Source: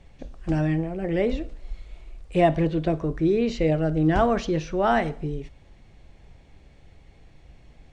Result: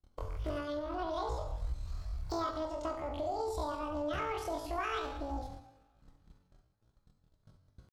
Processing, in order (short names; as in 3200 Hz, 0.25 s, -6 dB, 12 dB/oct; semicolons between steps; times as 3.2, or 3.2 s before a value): gate -44 dBFS, range -38 dB; de-hum 418.1 Hz, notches 2; compressor 6:1, threshold -34 dBFS, peak gain reduction 18.5 dB; two-slope reverb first 0.82 s, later 3.2 s, from -27 dB, DRR 2 dB; pitch shift +11 st; Doppler distortion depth 0.25 ms; gain -2 dB